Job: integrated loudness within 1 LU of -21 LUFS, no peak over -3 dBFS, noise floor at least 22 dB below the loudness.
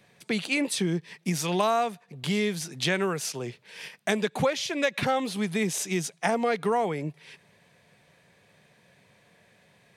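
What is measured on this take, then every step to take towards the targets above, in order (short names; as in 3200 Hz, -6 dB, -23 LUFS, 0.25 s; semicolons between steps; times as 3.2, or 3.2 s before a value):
loudness -28.0 LUFS; peak -10.5 dBFS; loudness target -21.0 LUFS
-> gain +7 dB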